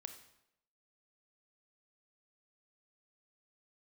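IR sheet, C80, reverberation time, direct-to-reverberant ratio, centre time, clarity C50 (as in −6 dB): 12.0 dB, 0.80 s, 7.0 dB, 14 ms, 9.0 dB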